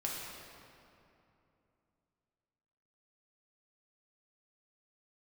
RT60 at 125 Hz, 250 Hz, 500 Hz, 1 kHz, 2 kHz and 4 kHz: 3.5, 3.4, 2.9, 2.7, 2.3, 1.8 seconds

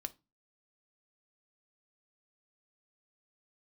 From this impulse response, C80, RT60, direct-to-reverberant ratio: 30.5 dB, 0.25 s, 9.0 dB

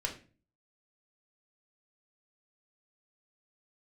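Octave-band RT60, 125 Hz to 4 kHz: 0.60, 0.55, 0.40, 0.30, 0.35, 0.30 seconds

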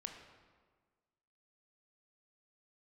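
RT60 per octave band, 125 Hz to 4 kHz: 1.5, 1.7, 1.6, 1.5, 1.2, 1.0 seconds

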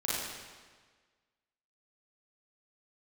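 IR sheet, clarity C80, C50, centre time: 0.0 dB, −3.5 dB, 113 ms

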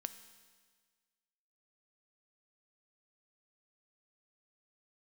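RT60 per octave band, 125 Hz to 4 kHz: 1.6, 1.6, 1.6, 1.6, 1.6, 1.6 seconds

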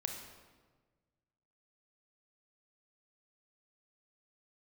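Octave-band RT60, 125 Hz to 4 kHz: 2.0, 1.7, 1.5, 1.3, 1.1, 1.0 seconds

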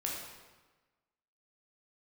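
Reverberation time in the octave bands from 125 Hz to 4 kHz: 1.3, 1.3, 1.2, 1.3, 1.1, 1.0 seconds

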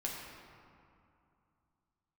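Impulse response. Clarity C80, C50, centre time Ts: 2.0 dB, 1.0 dB, 100 ms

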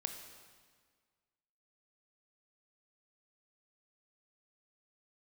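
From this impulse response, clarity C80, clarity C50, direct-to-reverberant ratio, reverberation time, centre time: 8.0 dB, 6.5 dB, 5.0 dB, 1.7 s, 33 ms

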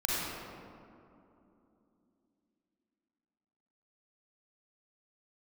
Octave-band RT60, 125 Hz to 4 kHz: 3.2, 4.3, 3.2, 2.6, 1.8, 1.2 seconds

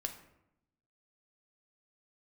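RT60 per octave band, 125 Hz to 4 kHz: 1.1, 1.1, 0.85, 0.80, 0.70, 0.50 seconds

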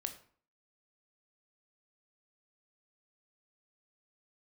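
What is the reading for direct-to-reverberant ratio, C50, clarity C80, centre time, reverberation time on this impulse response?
6.5 dB, 12.0 dB, 15.5 dB, 10 ms, 0.50 s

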